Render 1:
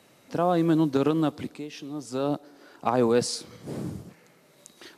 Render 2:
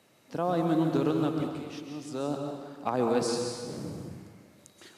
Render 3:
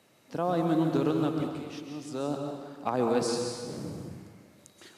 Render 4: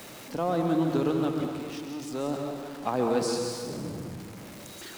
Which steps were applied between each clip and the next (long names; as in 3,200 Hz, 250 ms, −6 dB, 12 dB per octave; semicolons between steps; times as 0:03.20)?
dense smooth reverb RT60 1.6 s, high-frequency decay 0.85×, pre-delay 115 ms, DRR 2.5 dB; level −5.5 dB
no processing that can be heard
converter with a step at zero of −39.5 dBFS; mains-hum notches 50/100/150 Hz